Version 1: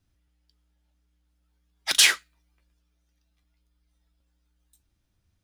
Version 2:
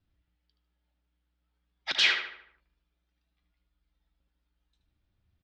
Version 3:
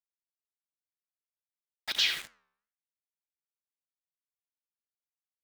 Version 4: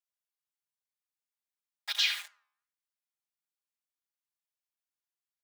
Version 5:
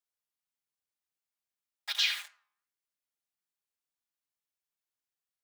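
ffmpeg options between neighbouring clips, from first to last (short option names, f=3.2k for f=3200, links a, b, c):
-filter_complex "[0:a]lowpass=f=4.3k:w=0.5412,lowpass=f=4.3k:w=1.3066,asplit=2[a][b];[b]adelay=75,lowpass=f=3.4k:p=1,volume=-5.5dB,asplit=2[c][d];[d]adelay=75,lowpass=f=3.4k:p=1,volume=0.5,asplit=2[e][f];[f]adelay=75,lowpass=f=3.4k:p=1,volume=0.5,asplit=2[g][h];[h]adelay=75,lowpass=f=3.4k:p=1,volume=0.5,asplit=2[i][j];[j]adelay=75,lowpass=f=3.4k:p=1,volume=0.5,asplit=2[k][l];[l]adelay=75,lowpass=f=3.4k:p=1,volume=0.5[m];[c][e][g][i][k][m]amix=inputs=6:normalize=0[n];[a][n]amix=inputs=2:normalize=0,volume=-4dB"
-filter_complex "[0:a]acrossover=split=150|3000[a][b][c];[b]acompressor=threshold=-38dB:ratio=4[d];[a][d][c]amix=inputs=3:normalize=0,aeval=exprs='val(0)*gte(abs(val(0)),0.0141)':c=same,flanger=delay=5:depth=9:regen=-87:speed=1:shape=sinusoidal,volume=5dB"
-af "highpass=f=770:w=0.5412,highpass=f=770:w=1.3066,aecho=1:1:4.9:0.85,volume=-3dB"
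-af "flanger=delay=2.2:depth=6.2:regen=-86:speed=1.1:shape=sinusoidal,volume=4dB"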